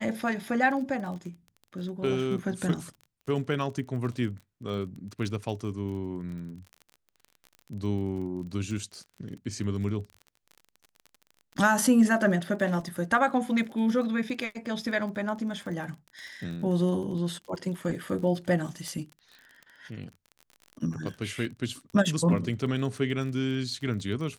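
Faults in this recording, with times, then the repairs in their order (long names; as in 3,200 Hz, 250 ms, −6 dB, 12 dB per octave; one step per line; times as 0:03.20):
surface crackle 33 per second −37 dBFS
0:18.88: click −24 dBFS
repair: click removal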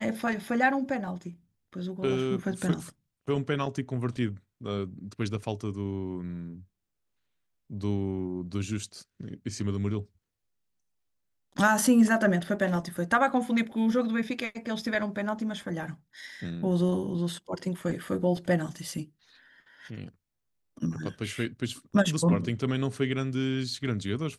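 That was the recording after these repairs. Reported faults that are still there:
none of them is left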